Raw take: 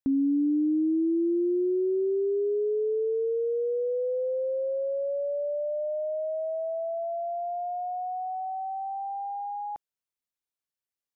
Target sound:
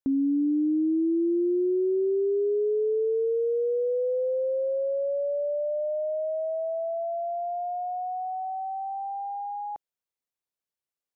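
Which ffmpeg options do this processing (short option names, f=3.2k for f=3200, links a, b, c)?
-af "equalizer=f=500:t=o:w=1.9:g=4.5,volume=-2.5dB"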